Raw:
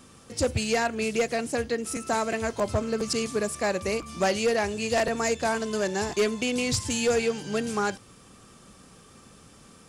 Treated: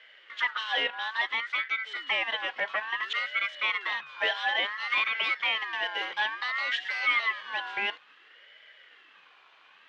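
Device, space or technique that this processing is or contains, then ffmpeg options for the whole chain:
voice changer toy: -af "aeval=exprs='val(0)*sin(2*PI*1500*n/s+1500*0.2/0.58*sin(2*PI*0.58*n/s))':channel_layout=same,highpass=510,equalizer=frequency=680:width_type=q:width=4:gain=-3,equalizer=frequency=960:width_type=q:width=4:gain=-5,equalizer=frequency=1400:width_type=q:width=4:gain=-6,equalizer=frequency=2100:width_type=q:width=4:gain=3,equalizer=frequency=3100:width_type=q:width=4:gain=9,lowpass=frequency=3500:width=0.5412,lowpass=frequency=3500:width=1.3066"

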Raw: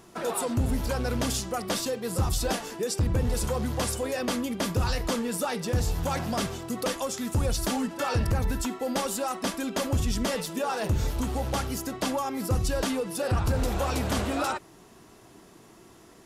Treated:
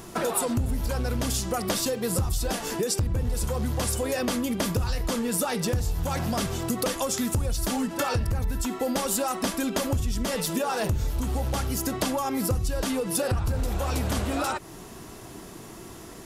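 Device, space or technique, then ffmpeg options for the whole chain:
ASMR close-microphone chain: -af "lowshelf=frequency=110:gain=7,acompressor=threshold=-33dB:ratio=6,highshelf=frequency=8900:gain=6.5,volume=8.5dB"

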